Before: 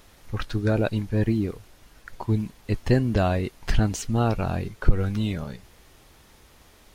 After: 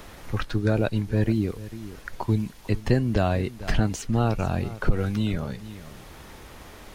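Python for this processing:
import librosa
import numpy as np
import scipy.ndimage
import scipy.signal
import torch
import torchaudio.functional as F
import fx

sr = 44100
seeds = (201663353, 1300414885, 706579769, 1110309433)

y = x + 10.0 ** (-19.5 / 20.0) * np.pad(x, (int(446 * sr / 1000.0), 0))[:len(x)]
y = fx.band_squash(y, sr, depth_pct=40)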